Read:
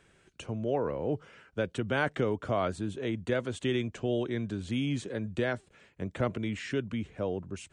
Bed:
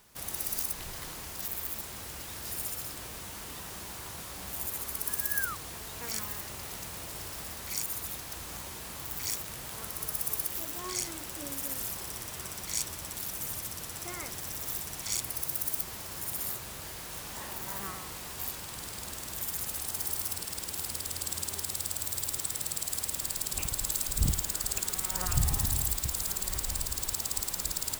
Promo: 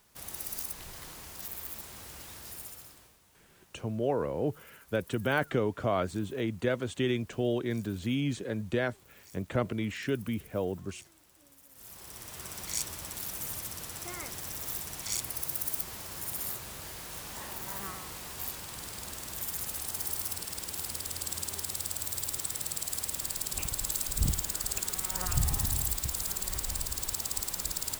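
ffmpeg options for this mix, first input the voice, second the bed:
-filter_complex "[0:a]adelay=3350,volume=0.5dB[a];[1:a]volume=16.5dB,afade=t=out:st=2.26:d=0.92:silence=0.133352,afade=t=in:st=11.72:d=0.89:silence=0.0891251[b];[a][b]amix=inputs=2:normalize=0"

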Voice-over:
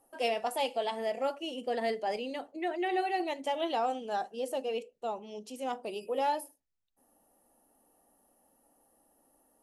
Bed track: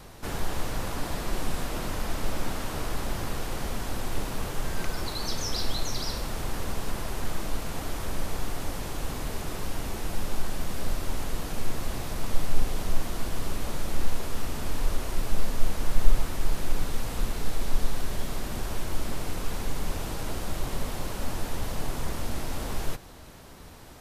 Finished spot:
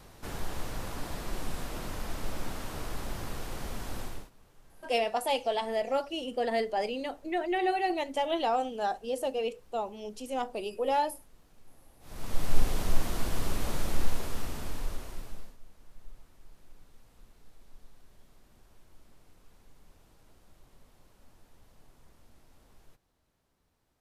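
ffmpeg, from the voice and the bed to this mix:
-filter_complex "[0:a]adelay=4700,volume=2.5dB[a];[1:a]volume=22.5dB,afade=t=out:st=4.01:d=0.29:silence=0.0707946,afade=t=in:st=12:d=0.57:silence=0.0375837,afade=t=out:st=13.81:d=1.76:silence=0.0398107[b];[a][b]amix=inputs=2:normalize=0"

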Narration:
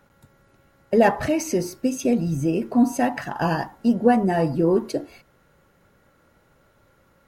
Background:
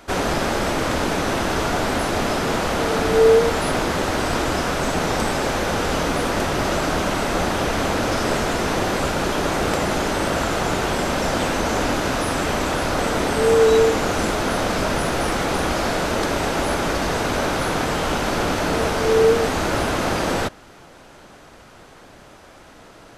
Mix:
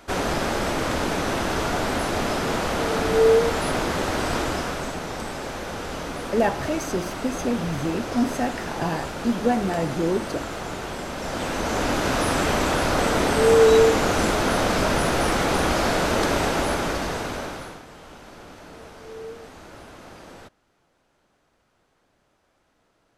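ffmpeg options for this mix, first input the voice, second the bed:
-filter_complex "[0:a]adelay=5400,volume=-4.5dB[a];[1:a]volume=7dB,afade=t=out:st=4.37:d=0.64:silence=0.446684,afade=t=in:st=11.16:d=1.09:silence=0.316228,afade=t=out:st=16.36:d=1.46:silence=0.0794328[b];[a][b]amix=inputs=2:normalize=0"

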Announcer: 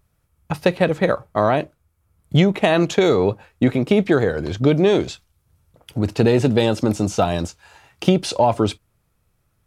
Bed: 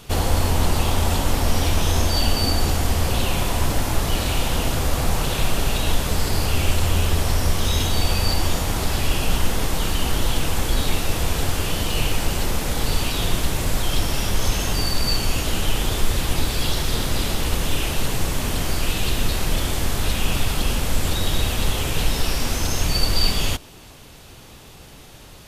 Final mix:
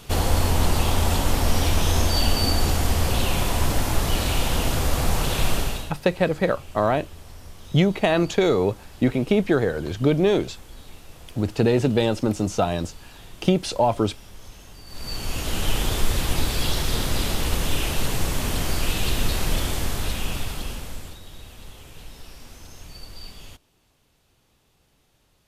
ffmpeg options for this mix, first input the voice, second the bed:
-filter_complex "[0:a]adelay=5400,volume=-3.5dB[a];[1:a]volume=20dB,afade=t=out:st=5.53:d=0.4:silence=0.0841395,afade=t=in:st=14.86:d=0.86:silence=0.0891251,afade=t=out:st=19.51:d=1.69:silence=0.105925[b];[a][b]amix=inputs=2:normalize=0"

